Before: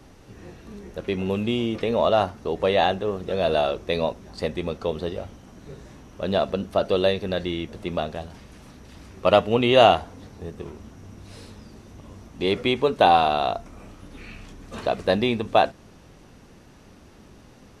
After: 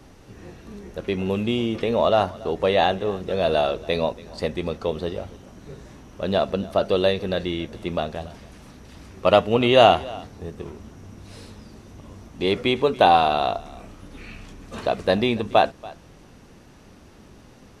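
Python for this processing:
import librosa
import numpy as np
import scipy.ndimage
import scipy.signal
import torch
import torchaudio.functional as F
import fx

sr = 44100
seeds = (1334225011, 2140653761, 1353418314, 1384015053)

y = x + 10.0 ** (-21.0 / 20.0) * np.pad(x, (int(283 * sr / 1000.0), 0))[:len(x)]
y = F.gain(torch.from_numpy(y), 1.0).numpy()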